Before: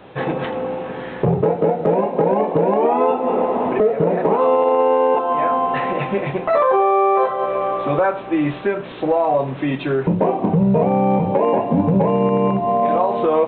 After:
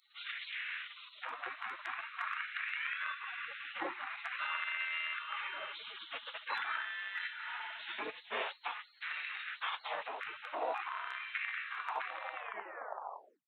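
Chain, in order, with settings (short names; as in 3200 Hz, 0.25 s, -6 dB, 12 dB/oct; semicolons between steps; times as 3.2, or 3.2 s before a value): tape stop at the end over 1.14 s; spectral gate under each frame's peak -30 dB weak; LFO high-pass sine 0.46 Hz 390–2000 Hz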